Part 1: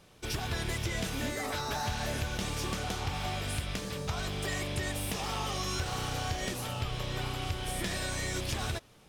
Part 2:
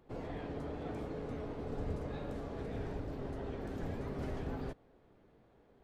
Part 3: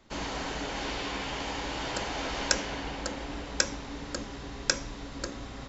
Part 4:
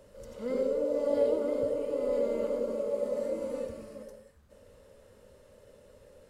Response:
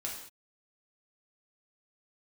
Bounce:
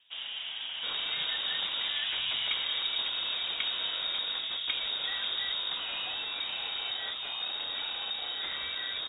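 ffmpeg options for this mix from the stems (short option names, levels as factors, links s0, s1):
-filter_complex "[0:a]aeval=exprs='(tanh(39.8*val(0)+0.25)-tanh(0.25))/39.8':c=same,adelay=600,volume=1.26[s0];[1:a]adelay=1050,volume=1.12[s1];[2:a]equalizer=f=700:w=0.75:g=14,volume=0.237[s2];[3:a]acrusher=samples=26:mix=1:aa=0.000001,volume=0.119[s3];[s0][s1][s2][s3]amix=inputs=4:normalize=0,lowpass=f=3200:t=q:w=0.5098,lowpass=f=3200:t=q:w=0.6013,lowpass=f=3200:t=q:w=0.9,lowpass=f=3200:t=q:w=2.563,afreqshift=-3800"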